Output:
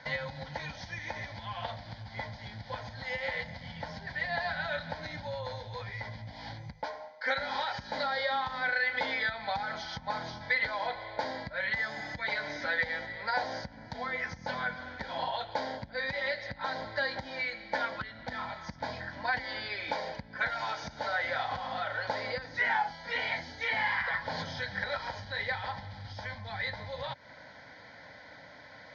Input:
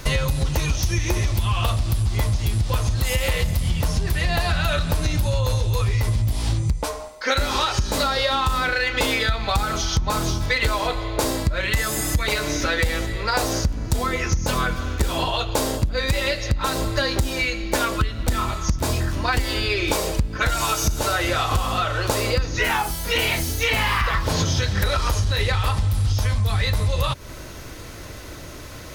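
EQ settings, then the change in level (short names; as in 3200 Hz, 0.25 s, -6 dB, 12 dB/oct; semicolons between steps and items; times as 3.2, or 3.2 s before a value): air absorption 220 m; speaker cabinet 340–6500 Hz, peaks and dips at 440 Hz -6 dB, 640 Hz -6 dB, 1100 Hz -3 dB, 3700 Hz -6 dB, 5700 Hz -5 dB; fixed phaser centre 1800 Hz, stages 8; -1.5 dB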